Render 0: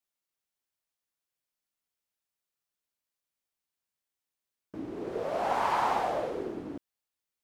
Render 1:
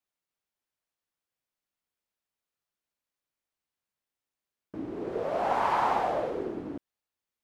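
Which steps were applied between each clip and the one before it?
high-shelf EQ 3,800 Hz −7.5 dB
level +2 dB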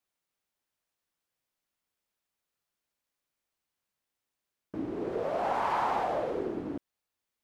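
in parallel at +2 dB: brickwall limiter −25 dBFS, peak gain reduction 9.5 dB
on the sum: speech leveller within 3 dB 2 s
level −7 dB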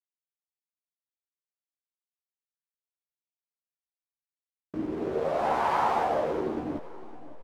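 slack as between gear wheels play −41 dBFS
double-tracking delay 13 ms −5 dB
repeating echo 559 ms, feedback 39%, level −17.5 dB
level +2.5 dB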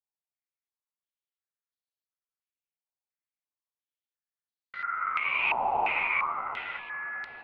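ring modulation 1,700 Hz
feedback echo with a low-pass in the loop 776 ms, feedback 57%, low-pass 1,200 Hz, level −10.5 dB
low-pass on a step sequencer 2.9 Hz 860–4,200 Hz
level −5 dB

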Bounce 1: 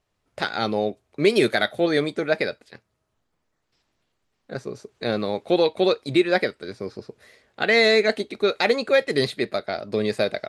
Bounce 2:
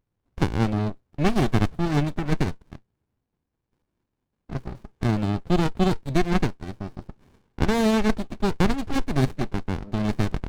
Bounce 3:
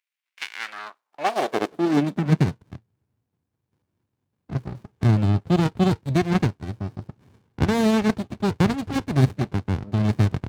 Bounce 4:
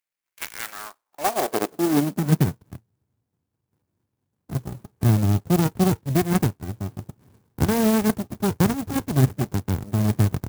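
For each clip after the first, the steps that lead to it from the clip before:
windowed peak hold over 65 samples
high-pass filter sweep 2,300 Hz → 100 Hz, 0:00.47–0:02.60
converter with an unsteady clock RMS 0.075 ms

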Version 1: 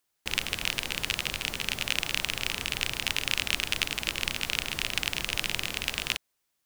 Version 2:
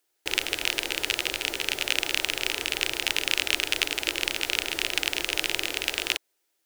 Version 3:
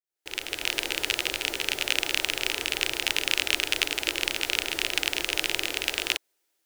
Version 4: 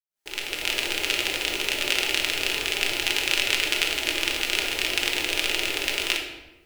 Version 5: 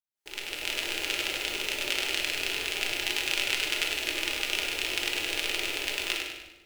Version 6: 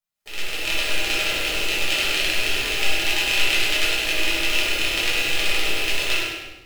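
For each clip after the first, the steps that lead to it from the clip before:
low shelf with overshoot 260 Hz −9 dB, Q 3; notch filter 1,100 Hz, Q 6.1; level +3 dB
fade in at the beginning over 0.80 s
log-companded quantiser 8 bits; rectangular room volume 500 cubic metres, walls mixed, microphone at 1.3 metres
feedback echo with a high-pass in the loop 100 ms, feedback 43%, level −6 dB; level −6 dB
rectangular room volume 670 cubic metres, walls furnished, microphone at 6.1 metres

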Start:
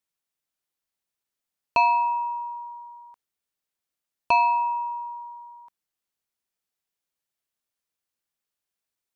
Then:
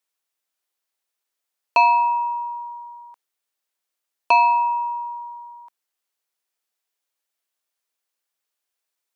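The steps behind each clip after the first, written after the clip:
high-pass filter 390 Hz
level +4.5 dB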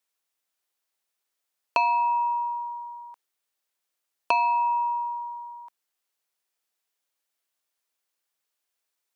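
downward compressor 3 to 1, threshold −22 dBFS, peak gain reduction 8.5 dB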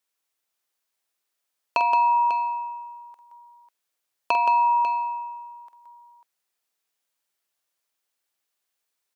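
multi-tap delay 47/172/545 ms −8.5/−6.5/−11 dB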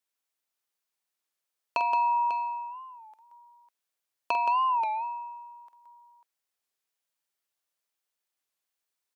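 wow of a warped record 33 1/3 rpm, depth 160 cents
level −5.5 dB

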